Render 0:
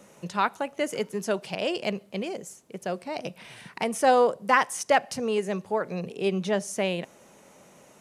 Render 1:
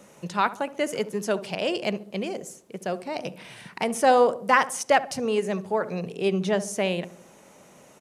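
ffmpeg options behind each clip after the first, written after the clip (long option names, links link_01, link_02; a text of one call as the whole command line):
ffmpeg -i in.wav -filter_complex "[0:a]asplit=2[link_01][link_02];[link_02]adelay=69,lowpass=frequency=880:poles=1,volume=-13dB,asplit=2[link_03][link_04];[link_04]adelay=69,lowpass=frequency=880:poles=1,volume=0.52,asplit=2[link_05][link_06];[link_06]adelay=69,lowpass=frequency=880:poles=1,volume=0.52,asplit=2[link_07][link_08];[link_08]adelay=69,lowpass=frequency=880:poles=1,volume=0.52,asplit=2[link_09][link_10];[link_10]adelay=69,lowpass=frequency=880:poles=1,volume=0.52[link_11];[link_01][link_03][link_05][link_07][link_09][link_11]amix=inputs=6:normalize=0,volume=1.5dB" out.wav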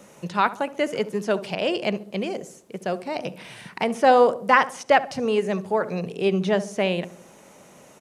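ffmpeg -i in.wav -filter_complex "[0:a]acrossover=split=4700[link_01][link_02];[link_02]acompressor=threshold=-48dB:ratio=4:attack=1:release=60[link_03];[link_01][link_03]amix=inputs=2:normalize=0,volume=2.5dB" out.wav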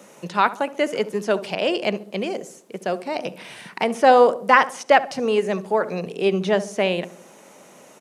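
ffmpeg -i in.wav -af "highpass=200,volume=2.5dB" out.wav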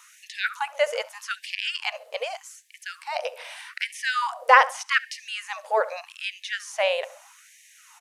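ffmpeg -i in.wav -af "afftfilt=real='re*gte(b*sr/1024,430*pow(1700/430,0.5+0.5*sin(2*PI*0.82*pts/sr)))':imag='im*gte(b*sr/1024,430*pow(1700/430,0.5+0.5*sin(2*PI*0.82*pts/sr)))':win_size=1024:overlap=0.75" out.wav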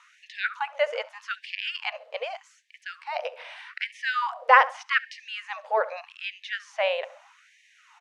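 ffmpeg -i in.wav -af "highpass=390,lowpass=3300,volume=-1dB" out.wav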